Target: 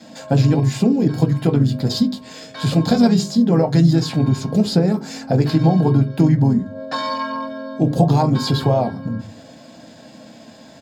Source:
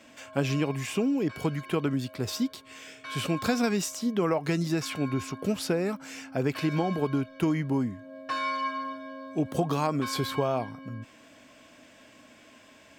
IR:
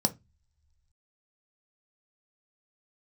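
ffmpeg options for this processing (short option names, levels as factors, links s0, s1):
-filter_complex "[0:a]asplit=2[s0][s1];[s1]adelay=13,volume=0.282[s2];[s0][s2]amix=inputs=2:normalize=0,atempo=1.2,acrossover=split=6700[s3][s4];[s4]alimiter=level_in=4.22:limit=0.0631:level=0:latency=1:release=222,volume=0.237[s5];[s3][s5]amix=inputs=2:normalize=0[s6];[1:a]atrim=start_sample=2205,asetrate=38808,aresample=44100[s7];[s6][s7]afir=irnorm=-1:irlink=0,adynamicequalizer=threshold=0.0141:dfrequency=570:dqfactor=7.9:tfrequency=570:tqfactor=7.9:attack=5:release=100:ratio=0.375:range=3.5:mode=cutabove:tftype=bell,asplit=2[s8][s9];[s9]asetrate=37084,aresample=44100,atempo=1.18921,volume=0.355[s10];[s8][s10]amix=inputs=2:normalize=0,bandreject=f=50:t=h:w=6,bandreject=f=100:t=h:w=6,bandreject=f=150:t=h:w=6,bandreject=f=200:t=h:w=6,bandreject=f=250:t=h:w=6,bandreject=f=300:t=h:w=6,bandreject=f=350:t=h:w=6,bandreject=f=400:t=h:w=6,bandreject=f=450:t=h:w=6,asplit=2[s11][s12];[s12]acompressor=threshold=0.1:ratio=6,volume=0.891[s13];[s11][s13]amix=inputs=2:normalize=0,volume=0.562"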